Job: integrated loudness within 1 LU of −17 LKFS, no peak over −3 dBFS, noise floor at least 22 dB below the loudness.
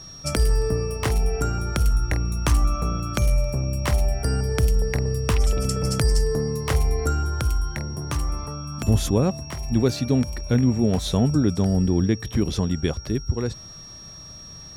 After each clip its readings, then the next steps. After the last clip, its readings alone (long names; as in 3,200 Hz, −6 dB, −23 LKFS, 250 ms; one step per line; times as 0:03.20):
interfering tone 5,600 Hz; level of the tone −40 dBFS; integrated loudness −23.5 LKFS; sample peak −8.0 dBFS; target loudness −17.0 LKFS
→ notch filter 5,600 Hz, Q 30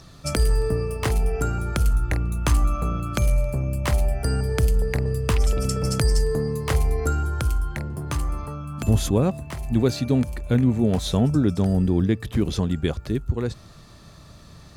interfering tone none found; integrated loudness −23.5 LKFS; sample peak −8.0 dBFS; target loudness −17.0 LKFS
→ level +6.5 dB
brickwall limiter −3 dBFS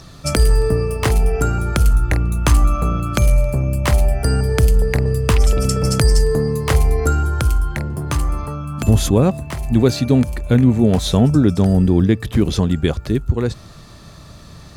integrated loudness −17.5 LKFS; sample peak −3.0 dBFS; background noise floor −40 dBFS